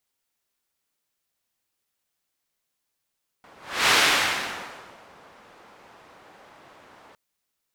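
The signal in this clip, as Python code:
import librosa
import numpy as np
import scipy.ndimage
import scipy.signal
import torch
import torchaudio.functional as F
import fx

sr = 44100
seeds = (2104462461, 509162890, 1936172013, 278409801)

y = fx.whoosh(sr, seeds[0], length_s=3.71, peak_s=0.47, rise_s=0.37, fall_s=1.27, ends_hz=910.0, peak_hz=2500.0, q=0.83, swell_db=33.0)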